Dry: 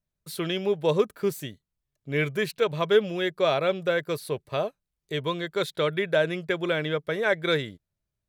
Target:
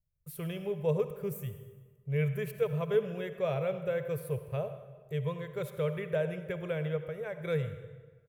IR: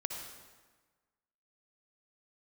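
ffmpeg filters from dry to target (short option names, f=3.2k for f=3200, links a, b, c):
-filter_complex "[0:a]firequalizer=gain_entry='entry(130,0);entry(280,-30);entry(450,-9);entry(730,-16);entry(1500,-19);entry(2600,-16);entry(4000,-30);entry(5700,-21);entry(13000,-7)':delay=0.05:min_phase=1,asettb=1/sr,asplit=3[a][b][c];[a]atrim=end=6.974[d];[b]atrim=start=6.97:end=7.41,asetpts=PTS-STARTPTS,afade=t=in:d=0.004:c=qsin,afade=t=out:st=0.436:d=0.004:c=qsin,acompressor=threshold=-40dB:ratio=6[e];[c]atrim=start=7.406[f];[d][e]acrossfade=d=0.004:c1=hsin:c2=qsin[g];[g][f]acrossfade=d=0.004:c1=qsin:c2=hsin,asplit=2[h][i];[1:a]atrim=start_sample=2205[j];[i][j]afir=irnorm=-1:irlink=0,volume=-2.5dB[k];[h][k]amix=inputs=2:normalize=0"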